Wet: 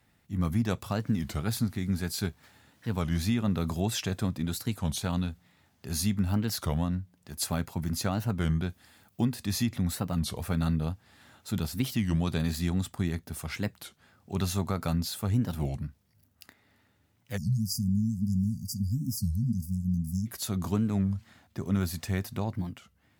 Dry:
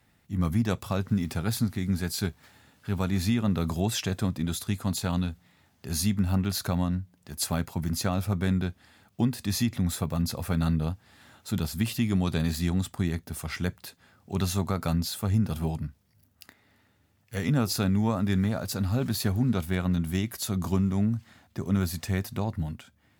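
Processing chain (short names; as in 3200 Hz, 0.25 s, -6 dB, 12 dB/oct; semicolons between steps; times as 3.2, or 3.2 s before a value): 8.68–9.25 high shelf 5700 Hz -> 11000 Hz +11 dB; 17.4–20.26 spectral delete 250–4600 Hz; record warp 33 1/3 rpm, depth 250 cents; gain -2 dB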